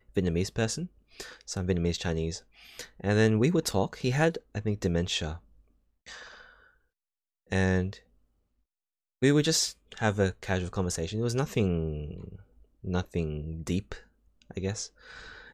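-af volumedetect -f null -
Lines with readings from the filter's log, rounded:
mean_volume: -30.6 dB
max_volume: -10.0 dB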